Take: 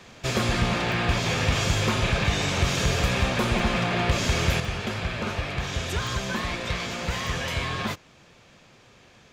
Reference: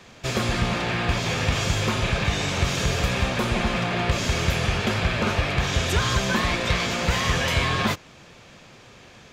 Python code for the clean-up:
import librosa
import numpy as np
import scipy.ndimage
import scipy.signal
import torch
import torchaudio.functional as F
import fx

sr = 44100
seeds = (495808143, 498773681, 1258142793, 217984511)

y = fx.fix_declip(x, sr, threshold_db=-13.5)
y = fx.fix_interpolate(y, sr, at_s=(0.92, 2.43, 3.59, 4.65, 6.07, 7.27), length_ms=1.1)
y = fx.fix_level(y, sr, at_s=4.6, step_db=6.0)